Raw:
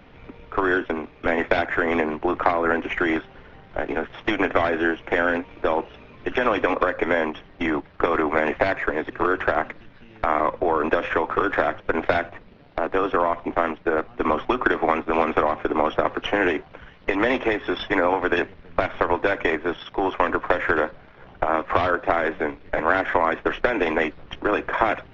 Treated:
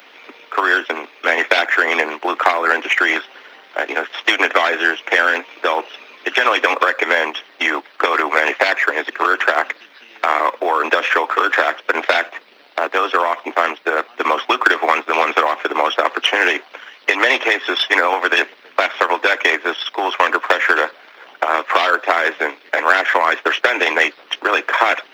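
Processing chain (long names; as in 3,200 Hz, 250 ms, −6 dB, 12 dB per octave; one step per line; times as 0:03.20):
harmonic and percussive parts rebalanced percussive +5 dB
spectral tilt +4.5 dB per octave
in parallel at −3 dB: soft clipping −11.5 dBFS, distortion −12 dB
on the sum: high-pass filter 270 Hz 24 dB per octave
log-companded quantiser 8 bits
level −1 dB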